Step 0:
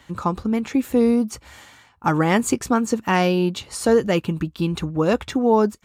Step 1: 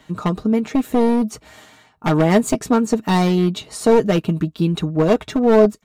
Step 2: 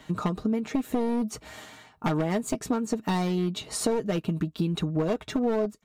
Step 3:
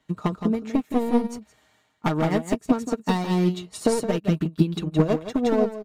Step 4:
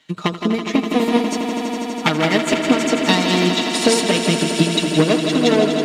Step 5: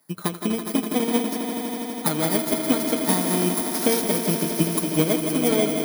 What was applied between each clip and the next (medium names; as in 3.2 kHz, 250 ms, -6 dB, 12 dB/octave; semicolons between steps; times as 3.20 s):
one-sided wavefolder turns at -17 dBFS; comb 6.5 ms, depth 50%; small resonant body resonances 230/400/640/3800 Hz, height 11 dB, ringing for 55 ms; trim -1.5 dB
compression 4:1, threshold -25 dBFS, peak gain reduction 15 dB
delay 167 ms -4.5 dB; upward expansion 2.5:1, over -38 dBFS; trim +8 dB
frequency weighting D; echo with a slow build-up 82 ms, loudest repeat 5, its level -10.5 dB; trim +5.5 dB
bit-reversed sample order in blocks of 16 samples; trim -5.5 dB